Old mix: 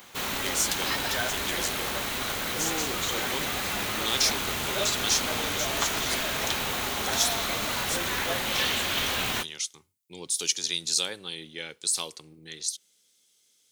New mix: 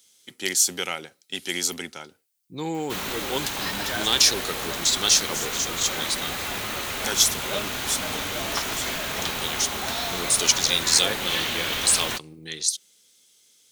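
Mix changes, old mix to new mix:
speech +7.0 dB; background: entry +2.75 s

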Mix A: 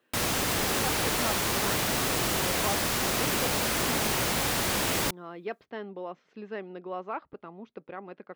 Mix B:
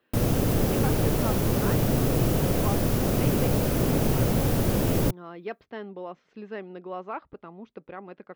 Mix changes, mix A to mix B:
background: add graphic EQ 125/250/500/1000/2000/4000/8000 Hz +9/+5/+6/-5/-7/-7/-7 dB; master: remove HPF 150 Hz 6 dB/oct

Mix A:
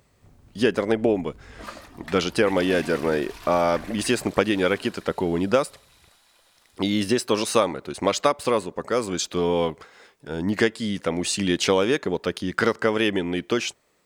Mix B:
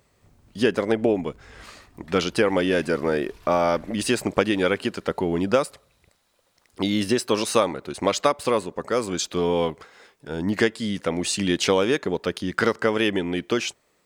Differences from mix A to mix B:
second sound -11.5 dB; reverb: off

